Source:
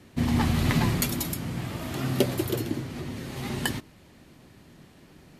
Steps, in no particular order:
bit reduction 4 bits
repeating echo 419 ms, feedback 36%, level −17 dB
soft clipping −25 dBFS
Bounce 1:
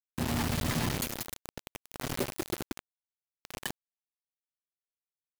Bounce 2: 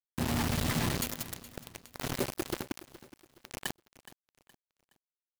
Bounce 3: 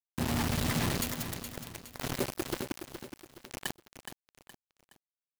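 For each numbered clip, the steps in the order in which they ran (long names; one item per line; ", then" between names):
repeating echo, then bit reduction, then soft clipping
bit reduction, then soft clipping, then repeating echo
bit reduction, then repeating echo, then soft clipping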